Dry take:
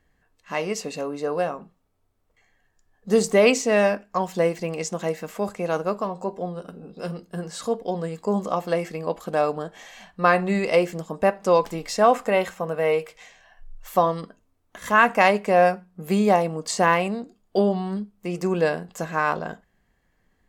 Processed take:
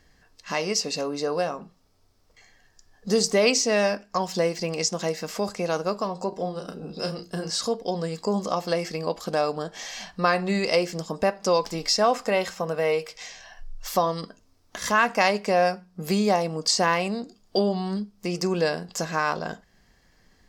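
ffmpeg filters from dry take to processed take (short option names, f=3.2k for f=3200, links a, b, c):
-filter_complex "[0:a]asettb=1/sr,asplit=3[a][b][c];[a]atrim=end=6.294[d];[b]atrim=start=6.29:end=7.5,asetpts=PTS-STARTPTS,afade=t=in:d=0.004:c=qsin,afade=t=out:st=1.206:d=0.004:c=qsin,asplit=2[e][f];[f]adelay=32,volume=-7dB[g];[e][g]amix=inputs=2:normalize=0,atrim=end_sample=53361[h];[c]atrim=start=7.496[i];[d][h]acrossfade=d=0.004:c1=hsin:c2=qsin[j];[j][i]acrossfade=d=0.004:c1=qsin:c2=hsin,equalizer=f=5.1k:w=1.8:g=14.5,acompressor=threshold=-43dB:ratio=1.5,volume=6.5dB"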